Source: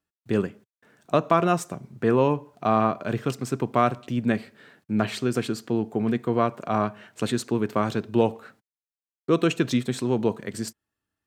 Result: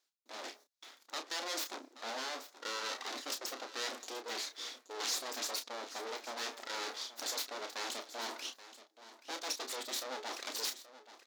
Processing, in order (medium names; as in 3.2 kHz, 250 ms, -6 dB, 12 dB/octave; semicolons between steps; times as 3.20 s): reverse; compression 6:1, threshold -32 dBFS, peak gain reduction 17.5 dB; reverse; reverb removal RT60 0.61 s; full-wave rectifier; valve stage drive 34 dB, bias 0.55; brick-wall FIR high-pass 230 Hz; high-order bell 5 kHz +9 dB 1.2 oct; level rider gain up to 6 dB; bass shelf 340 Hz -11 dB; doubling 31 ms -7.5 dB; on a send: delay 828 ms -15 dB; on the sum: trim +6.5 dB